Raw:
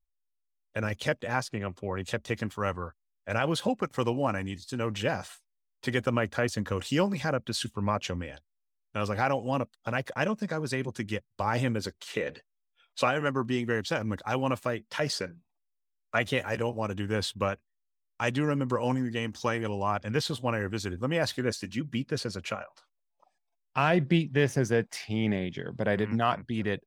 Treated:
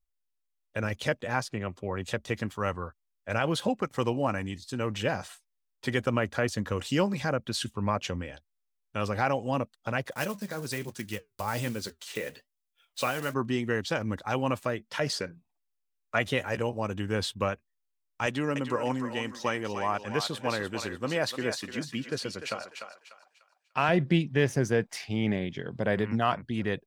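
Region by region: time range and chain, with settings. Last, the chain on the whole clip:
0:10.11–0:13.35: one scale factor per block 5 bits + high-shelf EQ 3,700 Hz +8 dB + flanger 1.2 Hz, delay 3.9 ms, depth 5.5 ms, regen −73%
0:18.26–0:23.89: high-pass filter 220 Hz 6 dB per octave + feedback echo with a high-pass in the loop 297 ms, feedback 33%, high-pass 680 Hz, level −6 dB
whole clip: no processing

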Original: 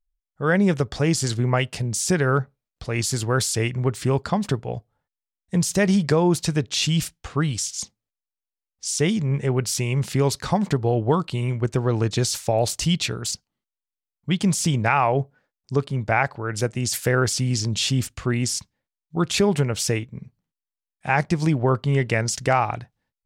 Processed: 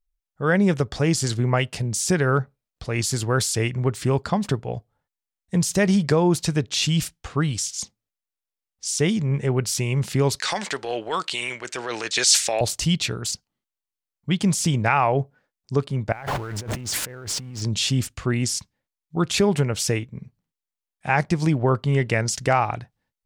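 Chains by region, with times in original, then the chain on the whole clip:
0:10.40–0:12.61: high-pass filter 490 Hz + flat-topped bell 3,800 Hz +12 dB 2.9 octaves + transient designer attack −8 dB, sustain +3 dB
0:16.12–0:17.62: converter with a step at zero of −26.5 dBFS + high-shelf EQ 3,800 Hz −9.5 dB + compressor whose output falls as the input rises −32 dBFS
whole clip: no processing

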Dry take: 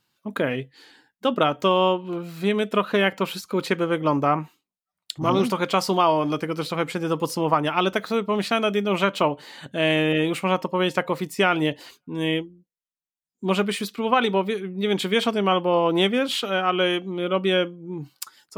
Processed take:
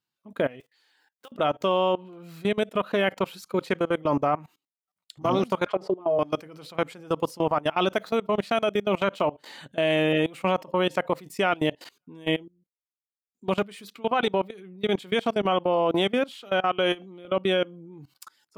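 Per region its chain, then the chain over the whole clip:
0:00.60–0:01.32: one scale factor per block 5 bits + high-pass filter 650 Hz + downward compressor, threshold −42 dBFS
0:05.66–0:06.19: envelope filter 320–1,500 Hz, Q 3.4, down, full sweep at −16.5 dBFS + comb filter 4.8 ms, depth 94% + envelope flattener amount 50%
whole clip: high-pass filter 44 Hz 6 dB per octave; dynamic equaliser 650 Hz, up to +6 dB, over −38 dBFS, Q 2.6; output level in coarse steps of 22 dB

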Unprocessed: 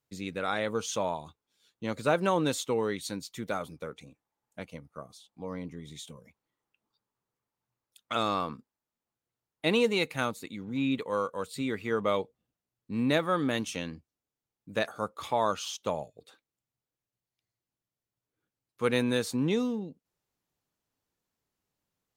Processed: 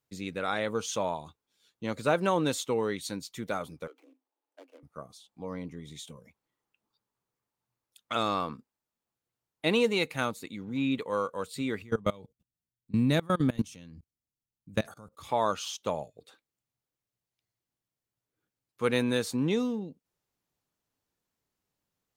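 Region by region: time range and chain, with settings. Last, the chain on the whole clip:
0:03.87–0:04.83: running median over 25 samples + Chebyshev high-pass filter 260 Hz, order 10 + downward compressor 1.5 to 1, threshold −59 dBFS
0:11.82–0:15.29: bass and treble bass +13 dB, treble +7 dB + output level in coarse steps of 24 dB
whole clip: no processing

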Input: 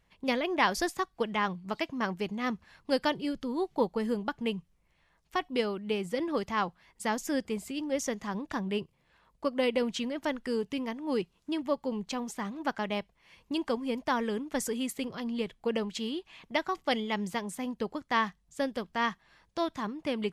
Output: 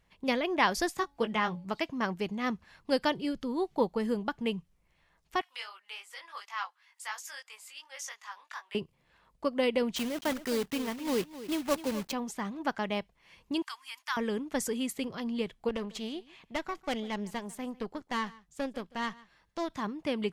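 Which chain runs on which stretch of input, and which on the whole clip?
0:00.96–0:01.65: double-tracking delay 18 ms −7.5 dB + hum removal 281.9 Hz, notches 3
0:05.41–0:08.75: high-pass filter 1,000 Hz 24 dB per octave + chorus effect 2.8 Hz, delay 18.5 ms, depth 2.7 ms + one half of a high-frequency compander encoder only
0:09.96–0:12.13: one scale factor per block 3 bits + single-tap delay 258 ms −14 dB
0:13.62–0:14.17: inverse Chebyshev high-pass filter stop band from 560 Hz + high-shelf EQ 6,700 Hz +6.5 dB
0:15.69–0:19.70: tube saturation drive 26 dB, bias 0.7 + single-tap delay 147 ms −21.5 dB
whole clip: no processing

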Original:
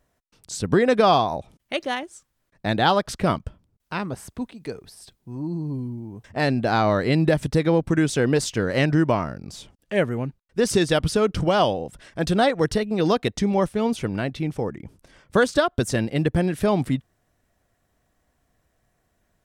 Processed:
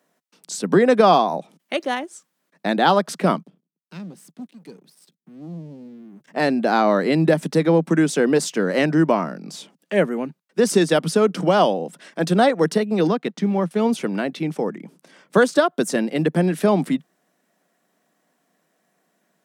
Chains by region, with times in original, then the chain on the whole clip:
0:03.43–0:06.28: guitar amp tone stack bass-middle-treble 10-0-1 + leveller curve on the samples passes 3
0:13.07–0:13.71: mu-law and A-law mismatch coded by A + low-pass filter 1,800 Hz 6 dB per octave + parametric band 590 Hz −5 dB 1.9 octaves
whole clip: Butterworth high-pass 160 Hz 72 dB per octave; dynamic equaliser 3,400 Hz, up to −4 dB, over −36 dBFS, Q 0.7; level +3.5 dB

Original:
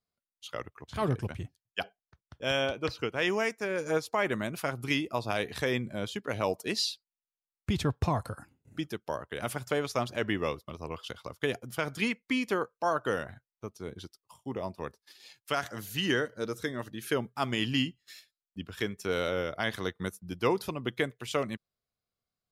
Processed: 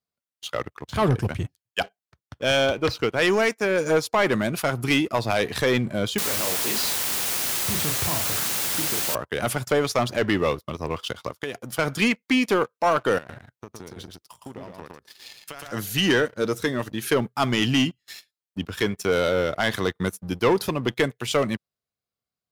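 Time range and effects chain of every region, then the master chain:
0:06.18–0:09.15: double-tracking delay 33 ms −5 dB + downward compressor 3 to 1, threshold −41 dBFS + bit-depth reduction 6 bits, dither triangular
0:11.30–0:11.79: low-shelf EQ 160 Hz −7.5 dB + downward compressor 4 to 1, threshold −38 dBFS
0:13.18–0:15.72: downward compressor 16 to 1, threshold −44 dBFS + single-tap delay 114 ms −3 dB
whole clip: high-pass filter 59 Hz; leveller curve on the samples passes 2; level +3 dB

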